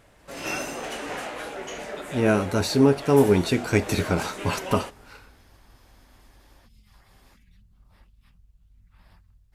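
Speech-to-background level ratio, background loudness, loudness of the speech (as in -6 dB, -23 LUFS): 12.0 dB, -34.5 LUFS, -22.5 LUFS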